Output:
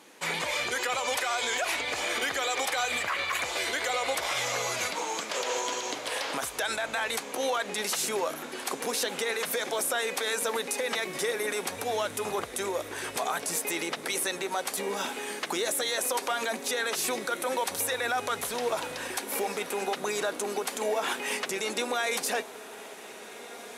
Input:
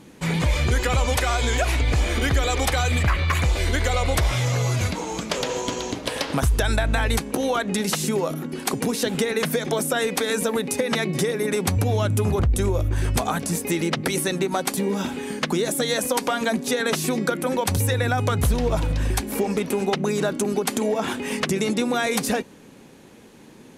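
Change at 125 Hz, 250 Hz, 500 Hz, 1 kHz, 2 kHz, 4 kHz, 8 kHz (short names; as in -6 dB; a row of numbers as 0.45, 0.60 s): -28.0, -15.5, -7.0, -3.5, -3.0, -3.0, -2.5 dB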